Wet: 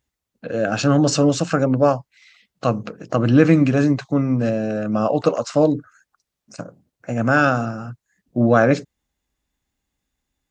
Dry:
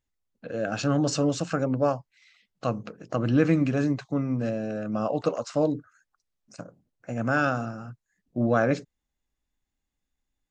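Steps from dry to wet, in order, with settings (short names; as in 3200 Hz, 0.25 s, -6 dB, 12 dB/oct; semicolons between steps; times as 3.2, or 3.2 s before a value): HPF 40 Hz; gain +8 dB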